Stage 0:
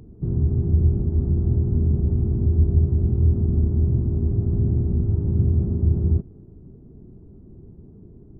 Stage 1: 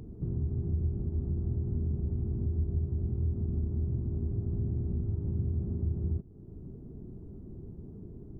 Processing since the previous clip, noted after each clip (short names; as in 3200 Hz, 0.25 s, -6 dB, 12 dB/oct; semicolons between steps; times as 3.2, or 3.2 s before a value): compressor 2:1, threshold -38 dBFS, peak gain reduction 14 dB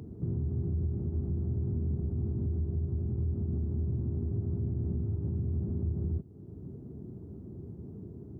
HPF 69 Hz 24 dB/oct; limiter -26.5 dBFS, peak gain reduction 4.5 dB; gain +2 dB